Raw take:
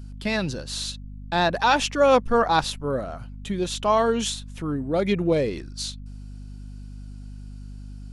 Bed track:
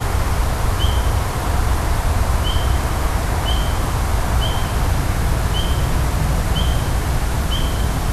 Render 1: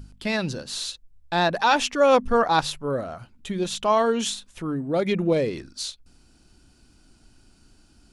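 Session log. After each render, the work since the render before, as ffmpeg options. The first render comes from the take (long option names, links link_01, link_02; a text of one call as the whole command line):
ffmpeg -i in.wav -af "bandreject=frequency=50:width_type=h:width=4,bandreject=frequency=100:width_type=h:width=4,bandreject=frequency=150:width_type=h:width=4,bandreject=frequency=200:width_type=h:width=4,bandreject=frequency=250:width_type=h:width=4" out.wav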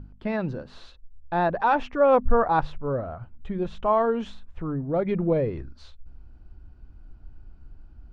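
ffmpeg -i in.wav -af "lowpass=1300,asubboost=boost=5:cutoff=100" out.wav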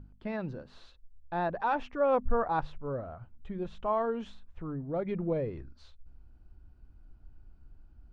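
ffmpeg -i in.wav -af "volume=-8dB" out.wav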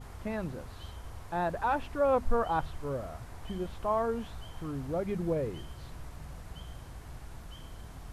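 ffmpeg -i in.wav -i bed.wav -filter_complex "[1:a]volume=-27.5dB[link_01];[0:a][link_01]amix=inputs=2:normalize=0" out.wav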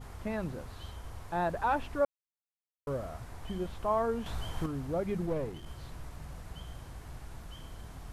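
ffmpeg -i in.wav -filter_complex "[0:a]asettb=1/sr,asplit=3[link_01][link_02][link_03];[link_01]atrim=end=5.264[link_04];[link_02]atrim=start=5.26:end=5.67,asetpts=PTS-STARTPTS,afade=type=in:duration=0.004:curve=qsin,afade=type=out:start_time=0.406:duration=0.004:curve=qsin,aeval=exprs='if(lt(val(0),0),0.447*val(0),val(0))':channel_layout=same[link_05];[link_03]atrim=start=5.666[link_06];[link_04][link_05]acrossfade=duration=0.004:curve1=hsin:curve2=qsin[link_07];[link_07][link_06]acrossfade=duration=0.004:curve1=qsin:curve2=hsin,asplit=5[link_08][link_09][link_10][link_11][link_12];[link_08]atrim=end=2.05,asetpts=PTS-STARTPTS,afade=type=out:start_time=2.046:duration=0.004:curve=hsin[link_13];[link_09]atrim=start=2.05:end=2.87,asetpts=PTS-STARTPTS,volume=0[link_14];[link_10]atrim=start=2.87:end=4.262,asetpts=PTS-STARTPTS,afade=type=in:duration=0.004:curve=hsin[link_15];[link_11]atrim=start=4.258:end=4.662,asetpts=PTS-STARTPTS,volume=6.5dB[link_16];[link_12]atrim=start=4.658[link_17];[link_13][link_14][link_15]concat=n=3:v=0:a=1[link_18];[link_18][link_16]acrossfade=duration=0.004:curve1=hsin:curve2=hsin[link_19];[link_19][link_17]acrossfade=duration=0.004:curve1=hsin:curve2=hsin" out.wav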